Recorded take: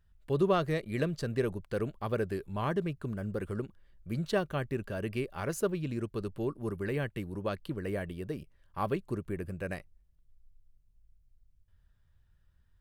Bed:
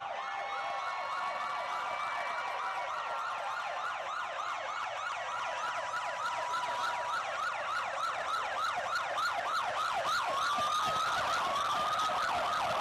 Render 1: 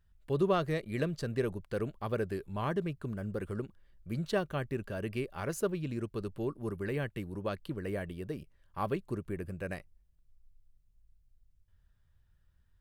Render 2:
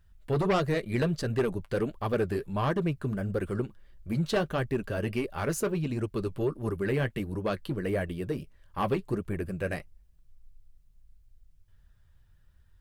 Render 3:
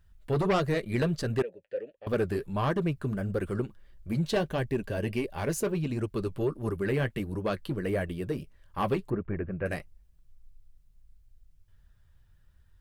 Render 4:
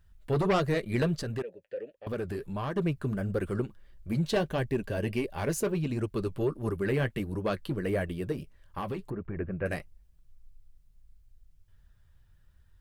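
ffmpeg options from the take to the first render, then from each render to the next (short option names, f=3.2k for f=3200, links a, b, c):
-af "volume=-1.5dB"
-af "aeval=exprs='0.141*sin(PI/2*2.24*val(0)/0.141)':c=same,flanger=delay=1.1:depth=8:regen=-45:speed=1.5:shape=triangular"
-filter_complex "[0:a]asettb=1/sr,asplit=3[a][b][c];[a]atrim=end=1.424[d];[b]atrim=start=1.42:end=2.07,asetpts=PTS-STARTPTS,afade=t=in:d=0.004:c=qsin,afade=t=out:st=0.646:d=0.004:c=qsin,asplit=3[e][f][g];[e]bandpass=f=530:t=q:w=8,volume=0dB[h];[f]bandpass=f=1.84k:t=q:w=8,volume=-6dB[i];[g]bandpass=f=2.48k:t=q:w=8,volume=-9dB[j];[h][i][j]amix=inputs=3:normalize=0[k];[c]atrim=start=2.066[l];[d][k]acrossfade=d=0.004:c1=hsin:c2=qsin[m];[m][l]acrossfade=d=0.004:c1=qsin:c2=hsin,asettb=1/sr,asplit=3[n][o][p];[n]atrim=end=4.174[q];[o]atrim=start=4.17:end=5.67,asetpts=PTS-STARTPTS,afade=t=in:d=0.004:c=qsin,afade=t=out:st=1.496:d=0.004:c=qsin,equalizer=f=1.3k:t=o:w=0.22:g=-11.5[r];[p]atrim=start=5.666[s];[q][r]acrossfade=d=0.004:c1=hsin:c2=qsin[t];[t][s]acrossfade=d=0.004:c1=qsin:c2=hsin,asettb=1/sr,asplit=3[u][v][w];[u]atrim=end=9.104[x];[v]atrim=start=9.1:end=9.66,asetpts=PTS-STARTPTS,afade=t=in:d=0.004:c=qsin,afade=t=out:st=0.556:d=0.004:c=qsin,lowpass=f=2.2k:w=0.5412,lowpass=f=2.2k:w=1.3066[y];[w]atrim=start=9.656[z];[x][y]acrossfade=d=0.004:c1=hsin:c2=qsin[aa];[aa][z]acrossfade=d=0.004:c1=qsin:c2=hsin"
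-filter_complex "[0:a]asettb=1/sr,asplit=3[a][b][c];[a]atrim=end=1.184[d];[b]atrim=start=1.18:end=2.77,asetpts=PTS-STARTPTS,afade=t=in:d=0.004:c=qsin,afade=t=out:st=1.586:d=0.004:c=qsin,acompressor=threshold=-32dB:ratio=2.5:attack=3.2:release=140:knee=1:detection=peak[e];[c]atrim=start=2.766[f];[d][e]acrossfade=d=0.004:c1=hsin:c2=qsin[g];[g][f]acrossfade=d=0.004:c1=qsin:c2=hsin,asettb=1/sr,asplit=3[h][i][j];[h]atrim=end=8.324[k];[i]atrim=start=8.32:end=9.37,asetpts=PTS-STARTPTS,afade=t=in:d=0.004:c=qsin,afade=t=out:st=1.046:d=0.004:c=qsin,acompressor=threshold=-30dB:ratio=10:attack=3.2:release=140:knee=1:detection=peak[l];[j]atrim=start=9.366[m];[k][l]acrossfade=d=0.004:c1=hsin:c2=qsin[n];[n][m]acrossfade=d=0.004:c1=qsin:c2=hsin"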